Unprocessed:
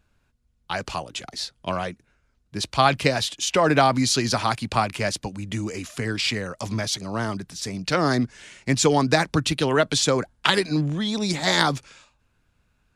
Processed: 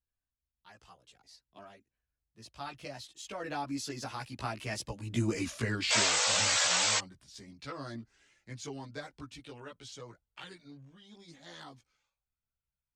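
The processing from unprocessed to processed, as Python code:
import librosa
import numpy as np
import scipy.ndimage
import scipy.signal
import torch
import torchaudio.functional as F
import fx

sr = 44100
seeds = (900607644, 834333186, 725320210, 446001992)

y = fx.doppler_pass(x, sr, speed_mps=24, closest_m=7.1, pass_at_s=5.4)
y = fx.spec_paint(y, sr, seeds[0], shape='noise', start_s=5.9, length_s=1.09, low_hz=440.0, high_hz=8200.0, level_db=-25.0)
y = fx.chorus_voices(y, sr, voices=4, hz=0.23, base_ms=16, depth_ms=2.1, mix_pct=55)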